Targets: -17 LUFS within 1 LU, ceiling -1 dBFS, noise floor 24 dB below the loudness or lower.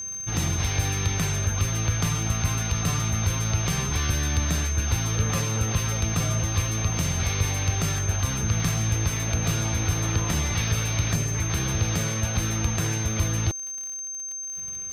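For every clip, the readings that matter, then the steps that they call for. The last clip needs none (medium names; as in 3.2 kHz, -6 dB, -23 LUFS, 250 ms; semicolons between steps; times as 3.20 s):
tick rate 53 per s; steady tone 6.3 kHz; tone level -31 dBFS; loudness -25.5 LUFS; peak level -11.5 dBFS; loudness target -17.0 LUFS
-> de-click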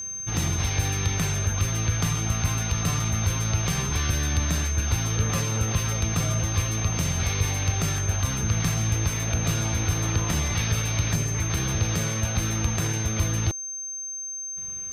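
tick rate 0.40 per s; steady tone 6.3 kHz; tone level -31 dBFS
-> band-stop 6.3 kHz, Q 30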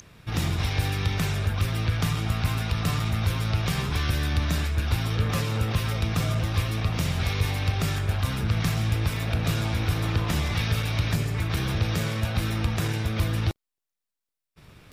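steady tone not found; loudness -26.5 LUFS; peak level -12.5 dBFS; loudness target -17.0 LUFS
-> trim +9.5 dB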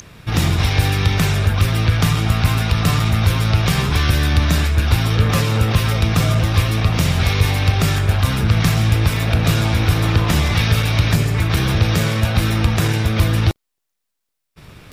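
loudness -17.0 LUFS; peak level -3.0 dBFS; noise floor -76 dBFS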